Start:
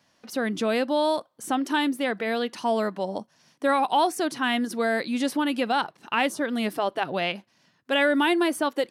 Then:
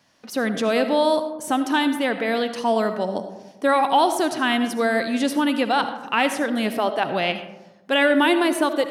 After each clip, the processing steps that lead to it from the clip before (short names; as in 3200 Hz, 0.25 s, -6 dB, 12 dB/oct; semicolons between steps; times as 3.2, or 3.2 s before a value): digital reverb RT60 1.1 s, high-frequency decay 0.35×, pre-delay 35 ms, DRR 9 dB; gain +3.5 dB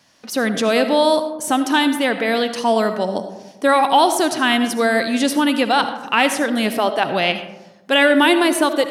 bell 8100 Hz +4.5 dB 2.6 oct; gain +3.5 dB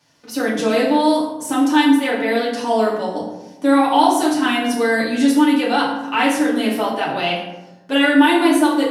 FDN reverb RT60 0.68 s, low-frequency decay 1.45×, high-frequency decay 0.65×, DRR -6 dB; gain -8.5 dB